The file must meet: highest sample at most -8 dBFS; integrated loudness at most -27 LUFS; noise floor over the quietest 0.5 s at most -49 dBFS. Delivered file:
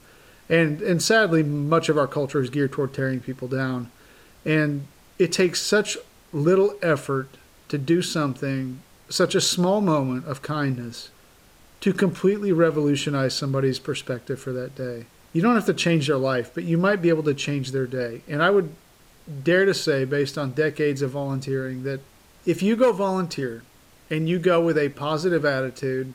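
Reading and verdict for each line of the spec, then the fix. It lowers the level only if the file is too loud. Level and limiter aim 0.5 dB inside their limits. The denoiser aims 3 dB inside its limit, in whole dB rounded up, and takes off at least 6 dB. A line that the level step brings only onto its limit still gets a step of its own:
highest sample -6.5 dBFS: fail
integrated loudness -23.0 LUFS: fail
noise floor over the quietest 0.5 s -53 dBFS: OK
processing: gain -4.5 dB

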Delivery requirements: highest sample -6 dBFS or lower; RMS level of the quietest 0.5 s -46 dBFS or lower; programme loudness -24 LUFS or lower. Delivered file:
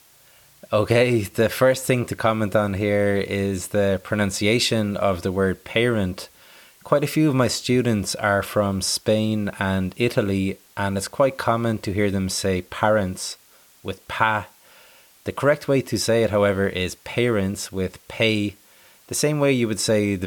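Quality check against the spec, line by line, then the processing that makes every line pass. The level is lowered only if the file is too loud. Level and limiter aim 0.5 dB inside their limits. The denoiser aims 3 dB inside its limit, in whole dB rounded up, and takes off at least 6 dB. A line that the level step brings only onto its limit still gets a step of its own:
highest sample -4.0 dBFS: fail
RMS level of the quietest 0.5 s -53 dBFS: OK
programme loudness -22.0 LUFS: fail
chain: gain -2.5 dB

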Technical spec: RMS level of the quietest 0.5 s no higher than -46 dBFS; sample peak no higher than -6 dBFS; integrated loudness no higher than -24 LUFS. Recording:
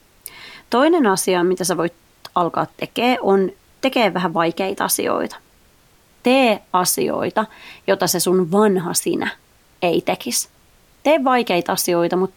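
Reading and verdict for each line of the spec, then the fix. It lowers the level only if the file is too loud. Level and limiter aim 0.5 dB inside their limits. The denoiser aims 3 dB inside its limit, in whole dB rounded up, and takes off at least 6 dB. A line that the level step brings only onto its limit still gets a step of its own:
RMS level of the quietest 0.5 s -54 dBFS: OK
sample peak -4.0 dBFS: fail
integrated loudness -18.5 LUFS: fail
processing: gain -6 dB

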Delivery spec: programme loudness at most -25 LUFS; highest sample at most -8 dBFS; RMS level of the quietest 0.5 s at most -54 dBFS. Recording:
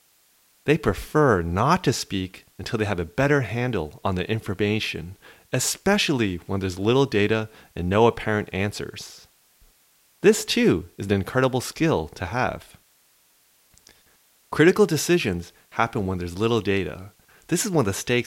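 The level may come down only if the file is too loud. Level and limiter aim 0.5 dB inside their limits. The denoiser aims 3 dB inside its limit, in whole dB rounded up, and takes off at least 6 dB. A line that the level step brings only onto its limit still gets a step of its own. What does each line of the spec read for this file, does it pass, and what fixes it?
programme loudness -23.0 LUFS: fail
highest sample -4.5 dBFS: fail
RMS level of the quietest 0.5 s -61 dBFS: OK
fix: gain -2.5 dB; limiter -8.5 dBFS

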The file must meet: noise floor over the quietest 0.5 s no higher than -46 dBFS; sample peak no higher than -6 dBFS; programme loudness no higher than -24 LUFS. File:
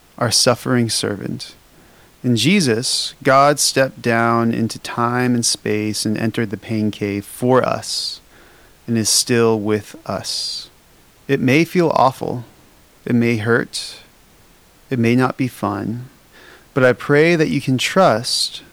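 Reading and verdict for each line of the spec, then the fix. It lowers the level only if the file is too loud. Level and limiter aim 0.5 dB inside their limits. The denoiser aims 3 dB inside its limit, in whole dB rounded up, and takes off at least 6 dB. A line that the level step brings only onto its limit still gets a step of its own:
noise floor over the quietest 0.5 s -50 dBFS: OK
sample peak -2.0 dBFS: fail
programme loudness -17.0 LUFS: fail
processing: gain -7.5 dB

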